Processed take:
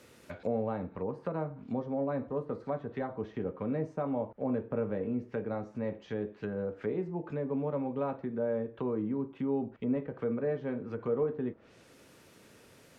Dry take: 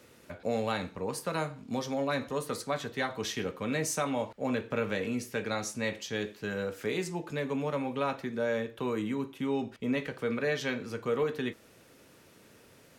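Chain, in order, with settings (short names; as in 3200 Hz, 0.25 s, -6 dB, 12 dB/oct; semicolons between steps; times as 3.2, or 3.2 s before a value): treble ducked by the level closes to 760 Hz, closed at -31.5 dBFS; 7.53–8.33 bell 5500 Hz +7.5 dB 2.1 oct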